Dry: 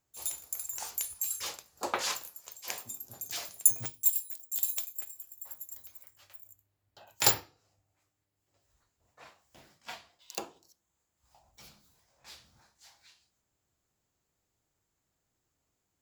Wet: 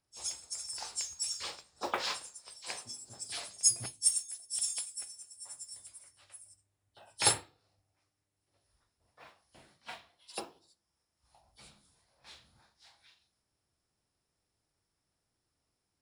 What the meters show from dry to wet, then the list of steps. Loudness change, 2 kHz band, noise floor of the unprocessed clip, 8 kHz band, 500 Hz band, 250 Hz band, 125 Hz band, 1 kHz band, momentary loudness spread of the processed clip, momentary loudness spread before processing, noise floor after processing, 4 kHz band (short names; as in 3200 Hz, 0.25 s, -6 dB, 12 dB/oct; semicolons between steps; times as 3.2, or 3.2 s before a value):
-2.5 dB, -1.5 dB, -82 dBFS, +1.0 dB, -1.5 dB, -1.5 dB, -1.5 dB, -1.5 dB, 21 LU, 21 LU, -84 dBFS, +1.5 dB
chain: nonlinear frequency compression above 2900 Hz 1.5:1; modulation noise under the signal 27 dB; gain -1.5 dB